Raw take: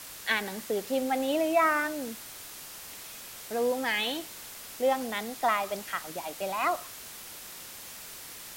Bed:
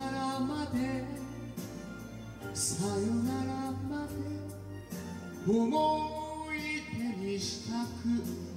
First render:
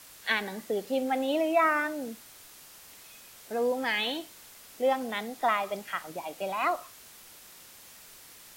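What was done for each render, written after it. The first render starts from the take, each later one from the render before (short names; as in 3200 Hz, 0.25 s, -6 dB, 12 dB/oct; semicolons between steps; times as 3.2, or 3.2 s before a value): noise print and reduce 7 dB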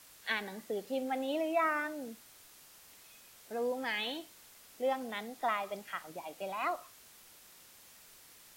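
gain -6.5 dB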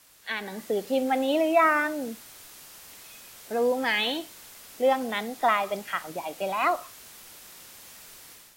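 AGC gain up to 10 dB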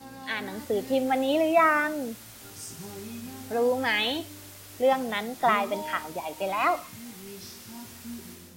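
add bed -9 dB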